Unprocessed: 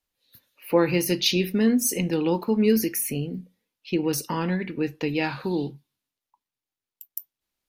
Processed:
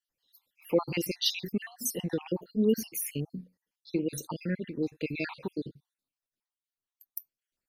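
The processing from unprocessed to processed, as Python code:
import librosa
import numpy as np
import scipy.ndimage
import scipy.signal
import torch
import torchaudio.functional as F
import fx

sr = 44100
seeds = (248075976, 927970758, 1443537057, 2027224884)

y = fx.spec_dropout(x, sr, seeds[0], share_pct=58)
y = F.gain(torch.from_numpy(y), -4.5).numpy()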